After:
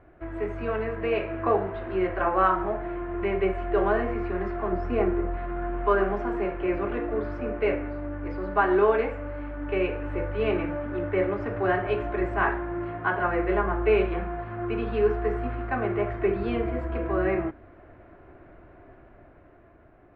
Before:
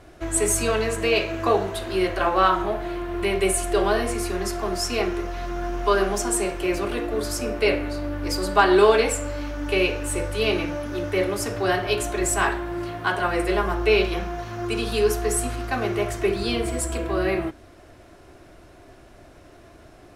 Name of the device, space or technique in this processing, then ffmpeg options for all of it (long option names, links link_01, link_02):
action camera in a waterproof case: -filter_complex "[0:a]asettb=1/sr,asplit=3[link_01][link_02][link_03];[link_01]atrim=end=4.724[link_04];[link_02]atrim=start=4.72:end=5.37,asetpts=PTS-STARTPTS,afade=type=in:duration=0.004:curve=qsin,afade=type=out:start_time=0.646:duration=0.004:curve=qsin,tiltshelf=frequency=940:gain=4.5[link_05];[link_03]atrim=start=5.366[link_06];[link_04][link_05]acrossfade=duration=0.004:curve1=hsin:curve2=qsin[link_07];[link_07][link_06]acrossfade=duration=0.004:curve1=qsin:curve2=hsin,lowpass=frequency=2100:width=0.5412,lowpass=frequency=2100:width=1.3066,dynaudnorm=framelen=160:gausssize=13:maxgain=5dB,volume=-6.5dB" -ar 44100 -c:a aac -b:a 96k